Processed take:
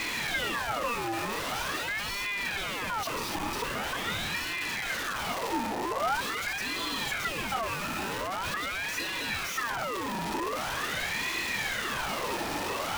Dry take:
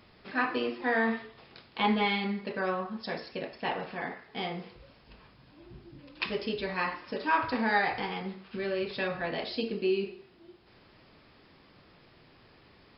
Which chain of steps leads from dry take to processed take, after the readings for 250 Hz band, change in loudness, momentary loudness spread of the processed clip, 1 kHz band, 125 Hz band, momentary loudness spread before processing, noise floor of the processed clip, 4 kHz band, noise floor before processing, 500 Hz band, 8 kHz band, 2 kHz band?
−4.0 dB, +0.5 dB, 3 LU, +2.0 dB, +1.5 dB, 12 LU, −34 dBFS, +7.0 dB, −59 dBFS, −3.0 dB, can't be measured, +3.5 dB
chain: sign of each sample alone
hollow resonant body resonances 270/1,200/1,900 Hz, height 12 dB
ring modulator whose carrier an LFO sweeps 1,400 Hz, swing 60%, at 0.44 Hz
level +1 dB

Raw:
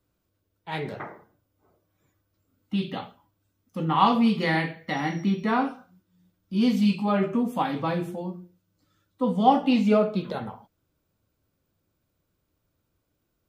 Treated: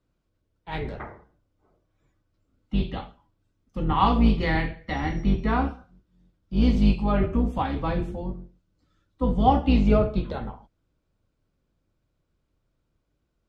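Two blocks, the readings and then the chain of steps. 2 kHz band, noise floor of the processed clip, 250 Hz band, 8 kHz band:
−1.5 dB, −75 dBFS, −0.5 dB, can't be measured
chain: sub-octave generator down 2 octaves, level +2 dB
high-frequency loss of the air 71 metres
level −1 dB

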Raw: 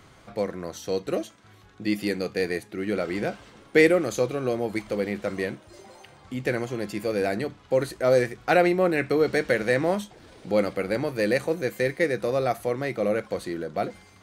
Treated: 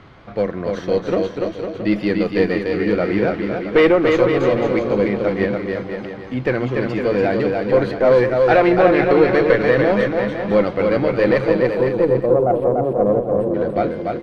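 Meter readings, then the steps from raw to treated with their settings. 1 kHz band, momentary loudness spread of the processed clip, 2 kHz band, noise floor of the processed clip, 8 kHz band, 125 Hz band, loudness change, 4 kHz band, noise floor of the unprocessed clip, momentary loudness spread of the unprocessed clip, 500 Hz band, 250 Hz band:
+9.0 dB, 10 LU, +5.5 dB, −32 dBFS, can't be measured, +9.0 dB, +8.5 dB, +4.0 dB, −53 dBFS, 10 LU, +9.0 dB, +9.0 dB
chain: time-frequency box erased 0:11.55–0:13.54, 890–7,500 Hz
parametric band 5,800 Hz +10 dB 1.5 octaves
in parallel at −10 dB: sample-rate reduction 7,500 Hz, jitter 0%
on the sum: harmonic generator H 5 −13 dB, 8 −22 dB, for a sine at −1.5 dBFS
high-frequency loss of the air 370 metres
on a send: bouncing-ball delay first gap 290 ms, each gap 0.75×, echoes 5

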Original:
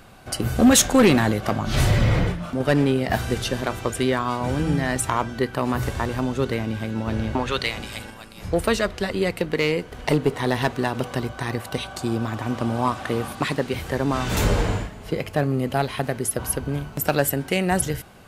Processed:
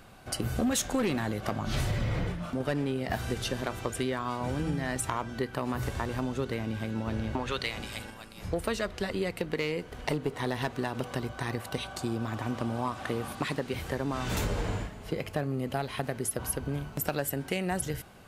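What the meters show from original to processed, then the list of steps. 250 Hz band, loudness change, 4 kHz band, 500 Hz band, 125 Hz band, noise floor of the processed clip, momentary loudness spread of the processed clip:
−10.0 dB, −9.5 dB, −9.0 dB, −9.5 dB, −9.0 dB, −46 dBFS, 4 LU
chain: downward compressor 4 to 1, threshold −22 dBFS, peak gain reduction 9.5 dB
level −5 dB

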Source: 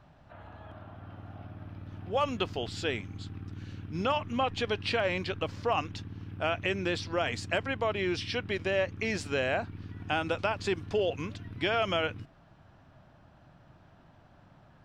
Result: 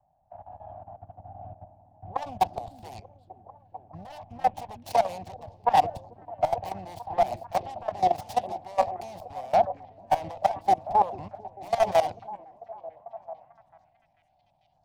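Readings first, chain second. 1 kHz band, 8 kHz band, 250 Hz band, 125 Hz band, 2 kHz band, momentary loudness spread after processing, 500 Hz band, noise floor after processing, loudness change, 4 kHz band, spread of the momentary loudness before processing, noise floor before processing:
+10.5 dB, +0.5 dB, −8.0 dB, −6.5 dB, −10.0 dB, 21 LU, +2.0 dB, −69 dBFS, +4.0 dB, −8.5 dB, 16 LU, −59 dBFS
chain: phase distortion by the signal itself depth 0.84 ms
drawn EQ curve 170 Hz 0 dB, 420 Hz −10 dB, 750 Hz +14 dB, 1,300 Hz −20 dB, 4,800 Hz −10 dB, 7,400 Hz −13 dB
in parallel at +1.5 dB: brickwall limiter −23.5 dBFS, peak gain reduction 7.5 dB
on the sum: parametric band 1,400 Hz +10 dB 2.8 octaves
output level in coarse steps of 16 dB
on a send: echo through a band-pass that steps 444 ms, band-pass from 290 Hz, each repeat 0.7 octaves, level −4.5 dB
on the sum: multiband upward and downward expander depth 70%
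level −4.5 dB

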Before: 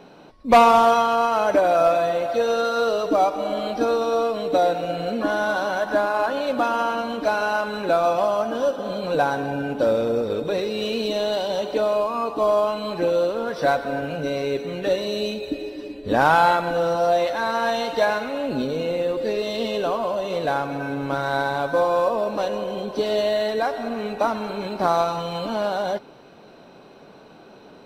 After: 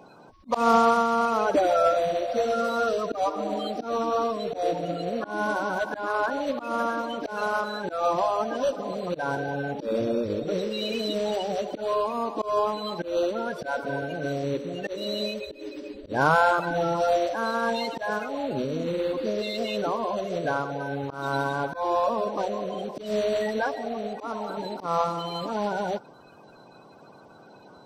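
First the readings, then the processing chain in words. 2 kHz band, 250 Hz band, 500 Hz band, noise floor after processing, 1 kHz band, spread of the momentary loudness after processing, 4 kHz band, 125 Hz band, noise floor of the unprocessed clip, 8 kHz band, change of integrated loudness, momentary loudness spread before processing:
−4.0 dB, −3.5 dB, −5.5 dB, −50 dBFS, −5.0 dB, 9 LU, −4.5 dB, −2.0 dB, −47 dBFS, −4.0 dB, −5.0 dB, 8 LU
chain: spectral magnitudes quantised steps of 30 dB
volume swells 161 ms
level −3 dB

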